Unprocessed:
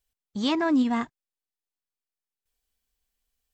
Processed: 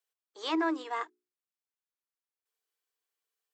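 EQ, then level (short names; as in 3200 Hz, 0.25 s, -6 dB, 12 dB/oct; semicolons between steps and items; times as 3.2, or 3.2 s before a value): rippled Chebyshev high-pass 310 Hz, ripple 6 dB; notches 60/120/180/240/300/360/420 Hz; -1.0 dB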